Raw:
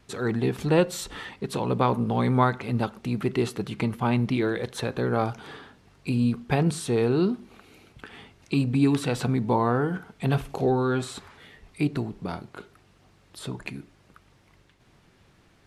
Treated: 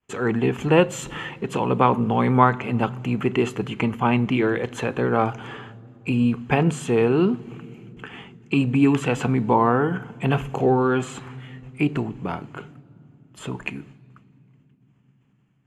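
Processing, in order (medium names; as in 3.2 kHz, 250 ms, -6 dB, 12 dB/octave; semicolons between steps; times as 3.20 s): expander -46 dBFS; reverberation RT60 3.6 s, pre-delay 3 ms, DRR 22 dB; trim -1 dB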